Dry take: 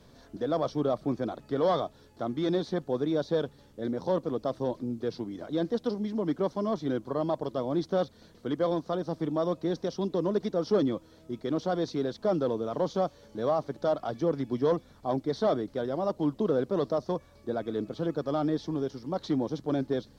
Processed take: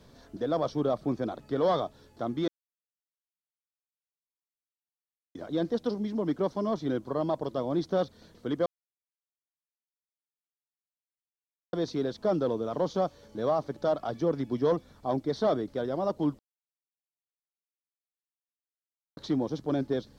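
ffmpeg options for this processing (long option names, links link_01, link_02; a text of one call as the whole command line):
ffmpeg -i in.wav -filter_complex "[0:a]asplit=7[link_01][link_02][link_03][link_04][link_05][link_06][link_07];[link_01]atrim=end=2.48,asetpts=PTS-STARTPTS,afade=type=out:start_time=2.476:duration=0.004:curve=hsin[link_08];[link_02]atrim=start=2.48:end=5.35,asetpts=PTS-STARTPTS,volume=0[link_09];[link_03]atrim=start=5.35:end=8.66,asetpts=PTS-STARTPTS,afade=type=in:duration=0.004:curve=hsin,afade=type=out:start_time=3.306:duration=0.004:curve=hsin[link_10];[link_04]atrim=start=8.66:end=11.73,asetpts=PTS-STARTPTS,volume=0[link_11];[link_05]atrim=start=11.73:end=16.39,asetpts=PTS-STARTPTS,afade=type=in:duration=0.004:curve=hsin,afade=type=out:start_time=4.656:duration=0.004:curve=hsin[link_12];[link_06]atrim=start=16.39:end=19.17,asetpts=PTS-STARTPTS,volume=0[link_13];[link_07]atrim=start=19.17,asetpts=PTS-STARTPTS,afade=type=in:duration=0.004:curve=hsin[link_14];[link_08][link_09][link_10][link_11][link_12][link_13][link_14]concat=n=7:v=0:a=1" out.wav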